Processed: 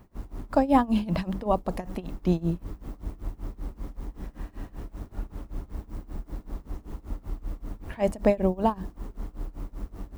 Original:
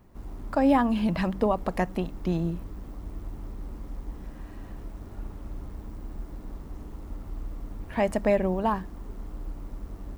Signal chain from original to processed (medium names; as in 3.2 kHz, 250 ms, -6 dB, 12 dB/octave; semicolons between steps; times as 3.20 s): tremolo 5.2 Hz, depth 92%; dynamic bell 1.8 kHz, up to -7 dB, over -47 dBFS, Q 0.96; trim +5 dB